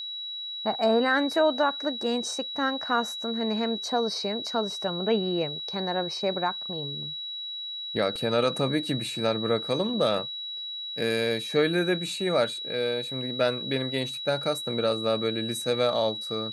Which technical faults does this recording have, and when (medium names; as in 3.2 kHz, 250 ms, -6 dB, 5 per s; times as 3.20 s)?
whine 3.9 kHz -33 dBFS